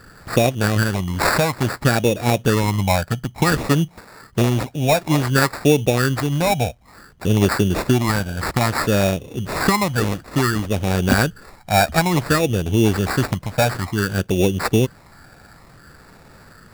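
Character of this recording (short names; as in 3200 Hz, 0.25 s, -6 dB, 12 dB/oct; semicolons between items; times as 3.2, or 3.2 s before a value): phasing stages 12, 0.57 Hz, lowest notch 370–1200 Hz; aliases and images of a low sample rate 3100 Hz, jitter 0%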